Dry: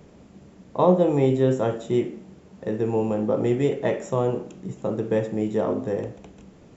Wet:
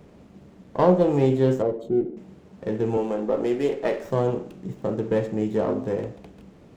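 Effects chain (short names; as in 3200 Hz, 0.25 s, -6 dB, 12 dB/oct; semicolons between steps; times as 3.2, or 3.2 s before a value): 1.62–2.17 formant sharpening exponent 2; 2.97–4.11 HPF 260 Hz 12 dB/oct; running maximum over 5 samples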